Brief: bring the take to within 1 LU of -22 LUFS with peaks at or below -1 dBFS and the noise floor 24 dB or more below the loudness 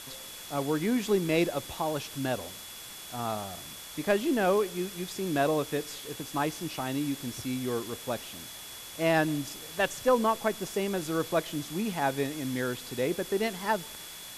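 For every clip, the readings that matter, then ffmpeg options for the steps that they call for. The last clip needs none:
steady tone 3400 Hz; tone level -48 dBFS; noise floor -44 dBFS; noise floor target -55 dBFS; loudness -30.5 LUFS; peak -13.0 dBFS; loudness target -22.0 LUFS
-> -af "bandreject=f=3.4k:w=30"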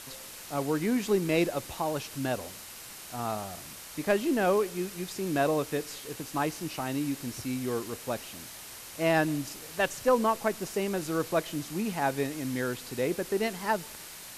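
steady tone none; noise floor -45 dBFS; noise floor target -55 dBFS
-> -af "afftdn=nr=10:nf=-45"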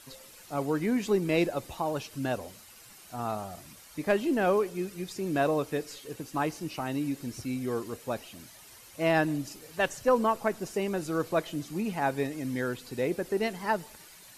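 noise floor -52 dBFS; noise floor target -55 dBFS
-> -af "afftdn=nr=6:nf=-52"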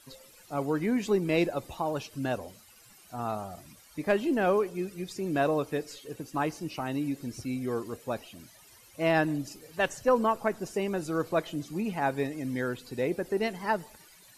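noise floor -56 dBFS; loudness -30.5 LUFS; peak -13.0 dBFS; loudness target -22.0 LUFS
-> -af "volume=8.5dB"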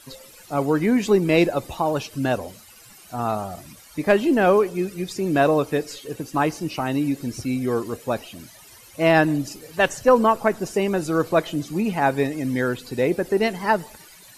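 loudness -22.0 LUFS; peak -4.5 dBFS; noise floor -48 dBFS

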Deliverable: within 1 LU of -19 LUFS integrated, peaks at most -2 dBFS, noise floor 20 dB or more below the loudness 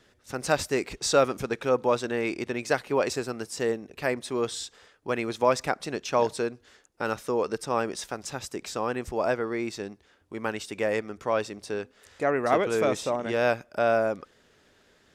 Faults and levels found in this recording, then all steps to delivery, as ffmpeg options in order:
loudness -28.0 LUFS; peak -8.0 dBFS; loudness target -19.0 LUFS
-> -af "volume=9dB,alimiter=limit=-2dB:level=0:latency=1"

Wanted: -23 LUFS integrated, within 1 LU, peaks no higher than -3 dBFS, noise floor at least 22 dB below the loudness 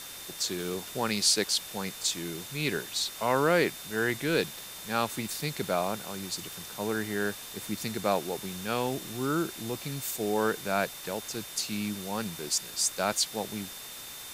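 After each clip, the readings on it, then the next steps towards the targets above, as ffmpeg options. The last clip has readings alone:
steady tone 3600 Hz; tone level -48 dBFS; noise floor -43 dBFS; noise floor target -53 dBFS; loudness -30.5 LUFS; peak -11.5 dBFS; loudness target -23.0 LUFS
-> -af "bandreject=f=3.6k:w=30"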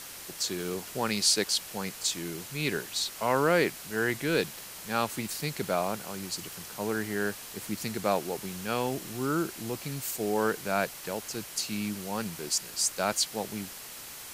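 steady tone none; noise floor -44 dBFS; noise floor target -53 dBFS
-> -af "afftdn=nr=9:nf=-44"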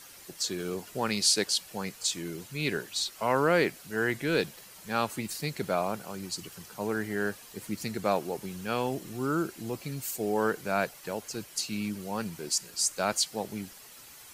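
noise floor -50 dBFS; noise floor target -53 dBFS
-> -af "afftdn=nr=6:nf=-50"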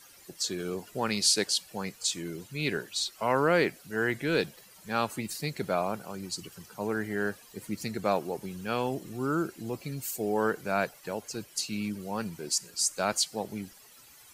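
noise floor -55 dBFS; loudness -30.5 LUFS; peak -11.5 dBFS; loudness target -23.0 LUFS
-> -af "volume=7.5dB"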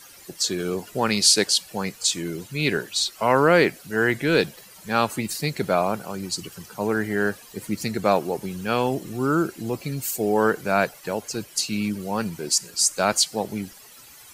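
loudness -23.0 LUFS; peak -4.0 dBFS; noise floor -47 dBFS

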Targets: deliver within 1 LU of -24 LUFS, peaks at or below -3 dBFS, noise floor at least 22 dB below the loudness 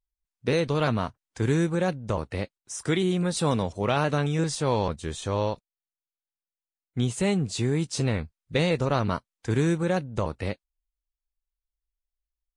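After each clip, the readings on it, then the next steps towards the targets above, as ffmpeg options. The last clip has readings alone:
loudness -27.0 LUFS; peak -9.5 dBFS; loudness target -24.0 LUFS
-> -af "volume=3dB"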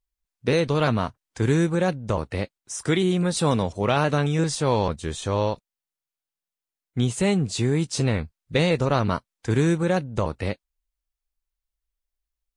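loudness -24.0 LUFS; peak -6.5 dBFS; noise floor -90 dBFS

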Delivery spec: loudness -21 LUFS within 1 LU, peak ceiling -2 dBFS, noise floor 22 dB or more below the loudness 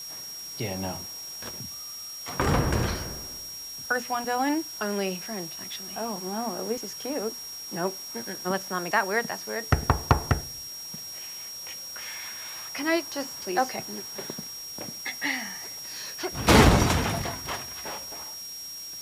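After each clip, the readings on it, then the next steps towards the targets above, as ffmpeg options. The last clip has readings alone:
steady tone 5600 Hz; tone level -37 dBFS; noise floor -39 dBFS; noise floor target -51 dBFS; loudness -29.0 LUFS; peak -6.5 dBFS; loudness target -21.0 LUFS
-> -af "bandreject=f=5.6k:w=30"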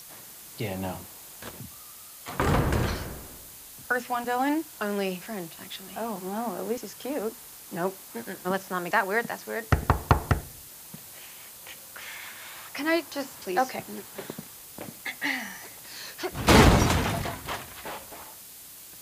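steady tone none; noise floor -46 dBFS; noise floor target -51 dBFS
-> -af "afftdn=nr=6:nf=-46"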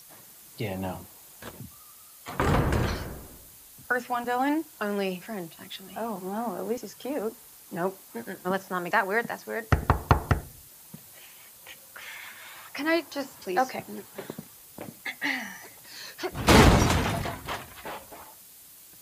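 noise floor -51 dBFS; loudness -28.0 LUFS; peak -6.5 dBFS; loudness target -21.0 LUFS
-> -af "volume=7dB,alimiter=limit=-2dB:level=0:latency=1"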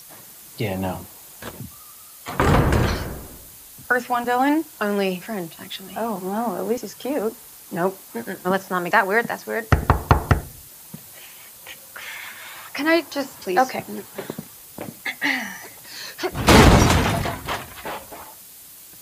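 loudness -21.5 LUFS; peak -2.0 dBFS; noise floor -44 dBFS

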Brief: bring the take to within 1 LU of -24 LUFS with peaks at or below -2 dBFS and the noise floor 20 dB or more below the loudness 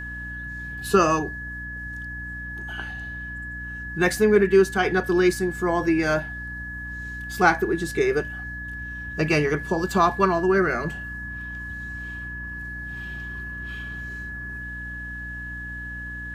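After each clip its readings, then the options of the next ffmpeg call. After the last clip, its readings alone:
hum 60 Hz; harmonics up to 300 Hz; hum level -36 dBFS; steady tone 1700 Hz; tone level -33 dBFS; loudness -25.5 LUFS; peak -3.0 dBFS; loudness target -24.0 LUFS
-> -af "bandreject=f=60:t=h:w=4,bandreject=f=120:t=h:w=4,bandreject=f=180:t=h:w=4,bandreject=f=240:t=h:w=4,bandreject=f=300:t=h:w=4"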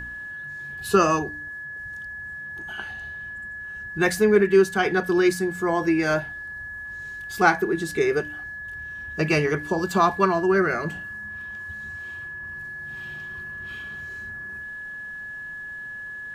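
hum none; steady tone 1700 Hz; tone level -33 dBFS
-> -af "bandreject=f=1.7k:w=30"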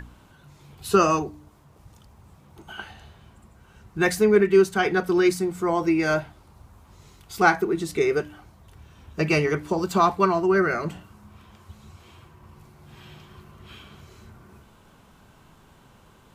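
steady tone none; loudness -22.0 LUFS; peak -3.0 dBFS; loudness target -24.0 LUFS
-> -af "volume=-2dB"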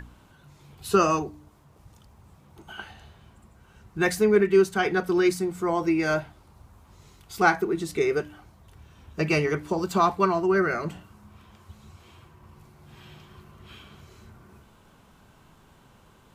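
loudness -24.0 LUFS; peak -5.0 dBFS; noise floor -56 dBFS

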